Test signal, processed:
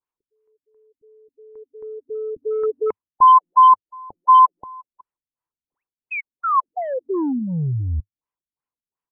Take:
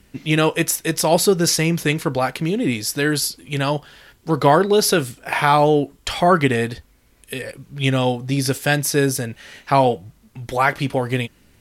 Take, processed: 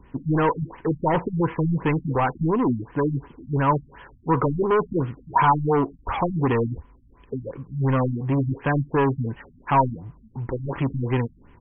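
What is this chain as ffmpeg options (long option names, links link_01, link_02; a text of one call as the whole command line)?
ffmpeg -i in.wav -filter_complex "[0:a]acrossover=split=2600[link_01][link_02];[link_02]acompressor=threshold=-33dB:ratio=4:attack=1:release=60[link_03];[link_01][link_03]amix=inputs=2:normalize=0,asplit=2[link_04][link_05];[link_05]aeval=exprs='0.126*(abs(mod(val(0)/0.126+3,4)-2)-1)':channel_layout=same,volume=-4dB[link_06];[link_04][link_06]amix=inputs=2:normalize=0,highshelf=frequency=2200:gain=-9.5,aresample=16000,asoftclip=type=tanh:threshold=-15.5dB,aresample=44100,equalizer=frequency=100:width_type=o:width=0.33:gain=-3,equalizer=frequency=200:width_type=o:width=0.33:gain=-5,equalizer=frequency=630:width_type=o:width=0.33:gain=-7,equalizer=frequency=1000:width_type=o:width=0.33:gain=12,equalizer=frequency=4000:width_type=o:width=0.33:gain=3,afftfilt=real='re*lt(b*sr/1024,250*pow(3400/250,0.5+0.5*sin(2*PI*2.8*pts/sr)))':imag='im*lt(b*sr/1024,250*pow(3400/250,0.5+0.5*sin(2*PI*2.8*pts/sr)))':win_size=1024:overlap=0.75" out.wav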